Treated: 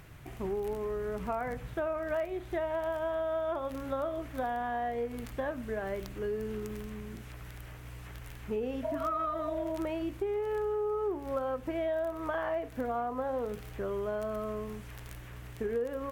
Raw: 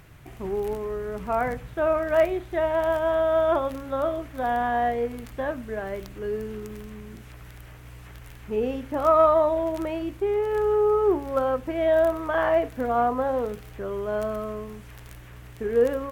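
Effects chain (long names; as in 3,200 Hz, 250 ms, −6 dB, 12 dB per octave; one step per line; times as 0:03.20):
healed spectral selection 0:08.86–0:09.69, 420–1,100 Hz after
downward compressor 6 to 1, threshold −29 dBFS, peak gain reduction 13 dB
level −1.5 dB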